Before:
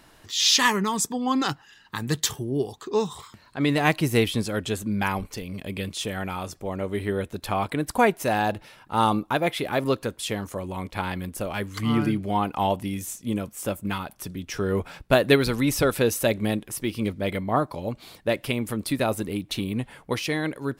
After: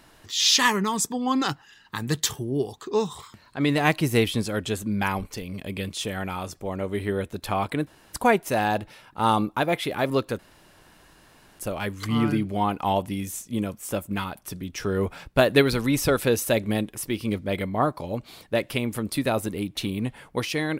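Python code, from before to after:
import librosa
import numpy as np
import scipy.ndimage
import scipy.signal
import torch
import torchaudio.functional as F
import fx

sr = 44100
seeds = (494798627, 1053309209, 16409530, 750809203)

y = fx.edit(x, sr, fx.insert_room_tone(at_s=7.87, length_s=0.26),
    fx.room_tone_fill(start_s=10.13, length_s=1.2), tone=tone)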